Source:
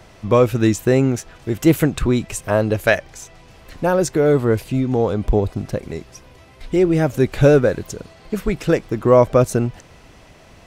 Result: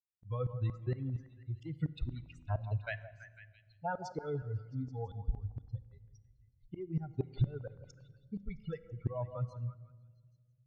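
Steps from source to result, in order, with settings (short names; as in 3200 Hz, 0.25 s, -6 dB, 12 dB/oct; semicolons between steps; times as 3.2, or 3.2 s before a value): per-bin expansion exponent 3; LPF 4100 Hz 24 dB/oct; resonant low shelf 170 Hz +9 dB, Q 3; compressor 6:1, threshold -28 dBFS, peak gain reduction 25 dB; tremolo saw up 4.3 Hz, depth 100%; delay with a stepping band-pass 0.166 s, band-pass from 790 Hz, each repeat 0.7 oct, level -8.5 dB; shoebox room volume 1900 m³, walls mixed, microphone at 0.31 m; gain -1.5 dB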